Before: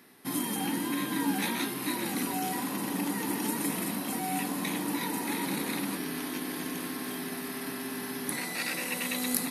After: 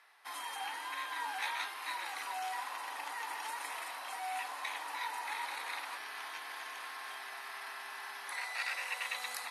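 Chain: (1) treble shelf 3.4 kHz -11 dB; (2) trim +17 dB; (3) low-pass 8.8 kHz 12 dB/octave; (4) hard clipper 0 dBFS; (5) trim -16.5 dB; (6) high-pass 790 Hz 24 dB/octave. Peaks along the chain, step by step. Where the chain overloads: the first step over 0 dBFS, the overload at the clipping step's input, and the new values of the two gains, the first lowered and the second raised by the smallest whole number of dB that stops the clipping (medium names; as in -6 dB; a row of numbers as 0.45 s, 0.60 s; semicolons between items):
-18.5 dBFS, -1.5 dBFS, -2.5 dBFS, -2.5 dBFS, -19.0 dBFS, -23.5 dBFS; nothing clips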